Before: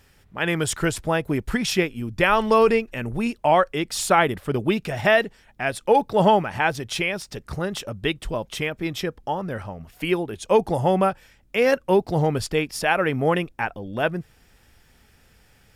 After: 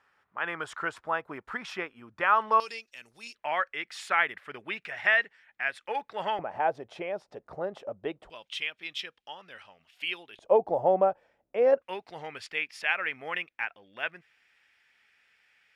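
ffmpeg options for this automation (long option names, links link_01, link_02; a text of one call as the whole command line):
ffmpeg -i in.wav -af "asetnsamples=nb_out_samples=441:pad=0,asendcmd='2.6 bandpass f 5000;3.35 bandpass f 1900;6.39 bandpass f 650;8.3 bandpass f 3000;10.39 bandpass f 620;11.82 bandpass f 2200',bandpass=frequency=1200:width_type=q:width=2.2:csg=0" out.wav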